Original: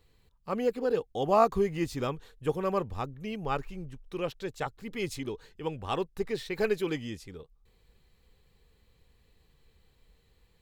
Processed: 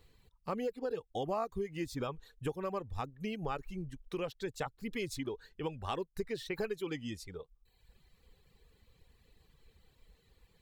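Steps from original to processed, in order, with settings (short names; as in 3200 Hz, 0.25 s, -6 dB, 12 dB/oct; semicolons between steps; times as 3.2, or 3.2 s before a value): reverb removal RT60 1 s; compressor 5:1, threshold -36 dBFS, peak gain reduction 16 dB; gain +2 dB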